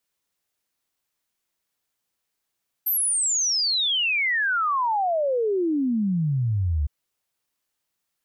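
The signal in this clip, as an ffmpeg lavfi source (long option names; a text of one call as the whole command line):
ffmpeg -f lavfi -i "aevalsrc='0.1*clip(min(t,4.01-t)/0.01,0,1)*sin(2*PI*13000*4.01/log(69/13000)*(exp(log(69/13000)*t/4.01)-1))':duration=4.01:sample_rate=44100" out.wav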